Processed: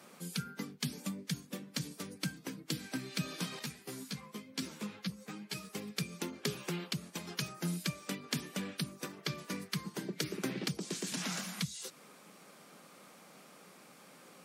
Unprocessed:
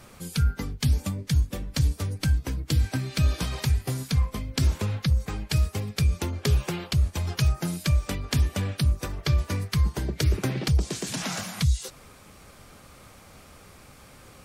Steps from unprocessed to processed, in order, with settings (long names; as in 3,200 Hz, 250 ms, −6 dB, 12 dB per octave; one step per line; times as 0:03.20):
Chebyshev high-pass filter 170 Hz, order 4
dynamic equaliser 700 Hz, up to −6 dB, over −51 dBFS, Q 1.2
0:03.59–0:05.70: string-ensemble chorus
level −5 dB